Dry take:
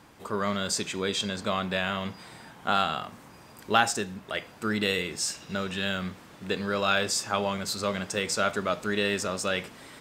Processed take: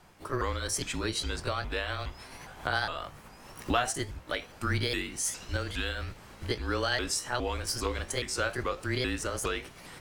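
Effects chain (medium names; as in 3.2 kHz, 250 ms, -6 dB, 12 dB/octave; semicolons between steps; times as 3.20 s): sawtooth pitch modulation +4.5 st, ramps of 411 ms; recorder AGC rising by 11 dB/s; band-stop 3.8 kHz, Q 23; frequency shift -140 Hz; trim -3.5 dB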